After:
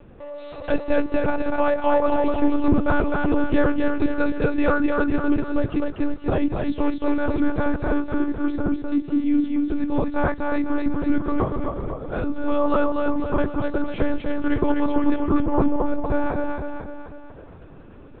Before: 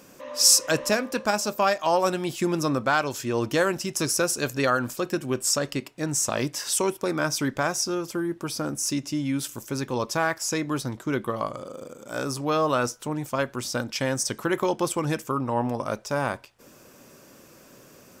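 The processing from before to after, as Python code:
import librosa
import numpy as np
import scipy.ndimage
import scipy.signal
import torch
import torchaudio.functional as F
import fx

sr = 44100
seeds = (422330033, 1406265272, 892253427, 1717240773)

y = fx.tilt_eq(x, sr, slope=-3.5)
y = fx.echo_feedback(y, sr, ms=249, feedback_pct=54, wet_db=-3)
y = fx.lpc_monotone(y, sr, seeds[0], pitch_hz=290.0, order=10)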